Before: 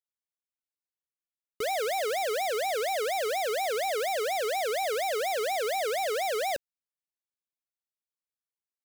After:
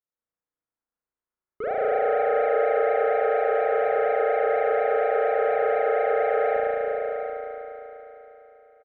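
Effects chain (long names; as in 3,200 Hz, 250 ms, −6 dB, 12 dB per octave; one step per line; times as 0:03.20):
low-pass filter 1,700 Hz 24 dB per octave
on a send: single-tap delay 732 ms −11 dB
on the sum: spring reverb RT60 3.7 s, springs 35 ms, chirp 55 ms, DRR −7 dB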